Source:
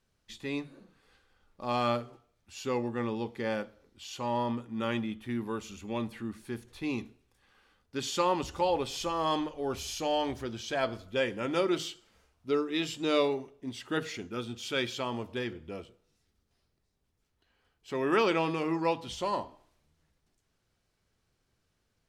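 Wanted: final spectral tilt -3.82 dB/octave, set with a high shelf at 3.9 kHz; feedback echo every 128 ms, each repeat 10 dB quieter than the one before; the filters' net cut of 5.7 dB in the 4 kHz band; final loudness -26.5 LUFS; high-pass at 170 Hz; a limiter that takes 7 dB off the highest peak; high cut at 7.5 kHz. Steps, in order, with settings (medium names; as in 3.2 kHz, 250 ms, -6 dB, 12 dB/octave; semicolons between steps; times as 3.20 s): high-pass 170 Hz; low-pass 7.5 kHz; treble shelf 3.9 kHz -4 dB; peaking EQ 4 kHz -5 dB; peak limiter -21 dBFS; feedback delay 128 ms, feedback 32%, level -10 dB; trim +8 dB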